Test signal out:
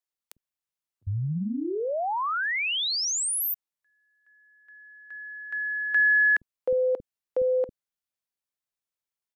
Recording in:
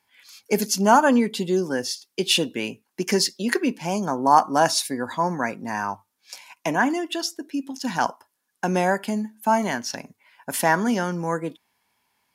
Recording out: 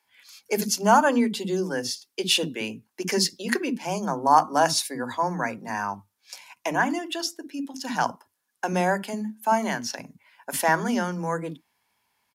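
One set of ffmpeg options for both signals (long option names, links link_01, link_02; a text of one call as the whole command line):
ffmpeg -i in.wav -filter_complex "[0:a]acrossover=split=290[link_01][link_02];[link_01]adelay=50[link_03];[link_03][link_02]amix=inputs=2:normalize=0,volume=-1.5dB" out.wav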